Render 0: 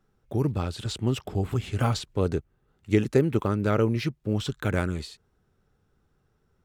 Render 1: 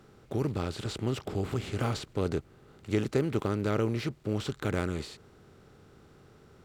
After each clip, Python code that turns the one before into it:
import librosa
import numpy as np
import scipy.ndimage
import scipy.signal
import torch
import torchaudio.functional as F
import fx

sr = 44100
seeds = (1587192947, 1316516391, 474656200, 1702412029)

y = fx.bin_compress(x, sr, power=0.6)
y = F.gain(torch.from_numpy(y), -8.0).numpy()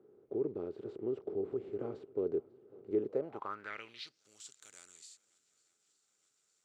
y = fx.echo_swing(x, sr, ms=910, ratio=1.5, feedback_pct=62, wet_db=-24)
y = fx.filter_sweep_bandpass(y, sr, from_hz=400.0, to_hz=7300.0, start_s=3.05, end_s=4.29, q=4.0)
y = F.gain(torch.from_numpy(y), 1.0).numpy()